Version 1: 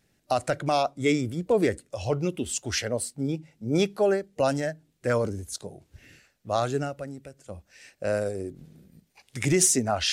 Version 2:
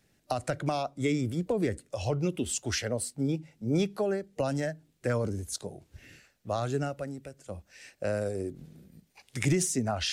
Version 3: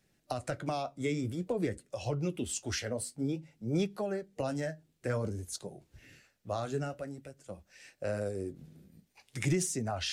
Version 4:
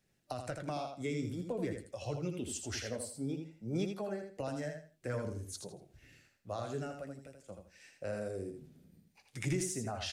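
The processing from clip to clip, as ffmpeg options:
-filter_complex "[0:a]acrossover=split=230[a][b];[b]acompressor=threshold=-28dB:ratio=6[c];[a][c]amix=inputs=2:normalize=0"
-af "flanger=delay=5.3:depth=6.9:regen=-56:speed=0.52:shape=sinusoidal"
-af "aecho=1:1:81|162|243:0.501|0.12|0.0289,volume=-5dB"

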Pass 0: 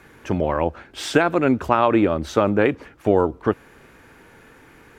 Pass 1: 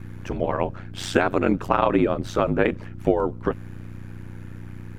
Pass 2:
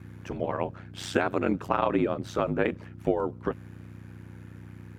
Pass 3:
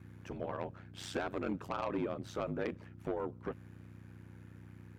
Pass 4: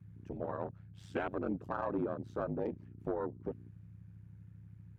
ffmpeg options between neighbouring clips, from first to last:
-af "aeval=exprs='val(0)+0.0251*(sin(2*PI*60*n/s)+sin(2*PI*2*60*n/s)/2+sin(2*PI*3*60*n/s)/3+sin(2*PI*4*60*n/s)/4+sin(2*PI*5*60*n/s)/5)':c=same,aeval=exprs='val(0)*sin(2*PI*46*n/s)':c=same"
-af "highpass=73,volume=-5.5dB"
-af "asoftclip=type=tanh:threshold=-19.5dB,volume=-8dB"
-af "afwtdn=0.01,volume=1dB"

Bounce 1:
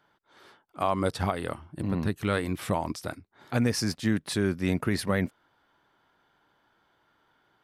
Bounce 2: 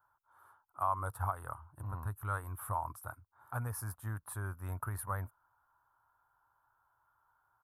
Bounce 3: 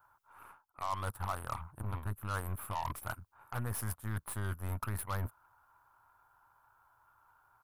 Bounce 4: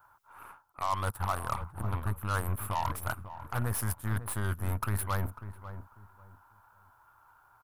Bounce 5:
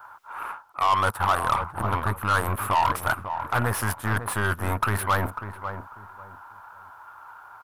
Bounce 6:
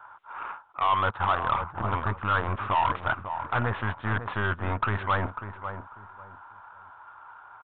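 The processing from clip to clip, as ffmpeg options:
-af "firequalizer=gain_entry='entry(110,0);entry(170,-21);entry(420,-17);entry(950,4);entry(1400,1);entry(2000,-20);entry(4700,-26);entry(11000,7)':delay=0.05:min_phase=1,volume=-5.5dB"
-af "areverse,acompressor=threshold=-46dB:ratio=4,areverse,aeval=exprs='0.0168*(cos(1*acos(clip(val(0)/0.0168,-1,1)))-cos(1*PI/2))+0.000668*(cos(7*acos(clip(val(0)/0.0168,-1,1)))-cos(7*PI/2))+0.0015*(cos(8*acos(clip(val(0)/0.0168,-1,1)))-cos(8*PI/2))':c=same,volume=10dB"
-filter_complex "[0:a]asplit=2[a][b];[b]adelay=546,lowpass=f=1.1k:p=1,volume=-11dB,asplit=2[c][d];[d]adelay=546,lowpass=f=1.1k:p=1,volume=0.24,asplit=2[e][f];[f]adelay=546,lowpass=f=1.1k:p=1,volume=0.24[g];[a][c][e][g]amix=inputs=4:normalize=0,volume=5.5dB"
-filter_complex "[0:a]asplit=2[a][b];[b]highpass=f=720:p=1,volume=17dB,asoftclip=type=tanh:threshold=-18dB[c];[a][c]amix=inputs=2:normalize=0,lowpass=f=2.6k:p=1,volume=-6dB,volume=6.5dB"
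-af "aresample=8000,aresample=44100,volume=-2.5dB"

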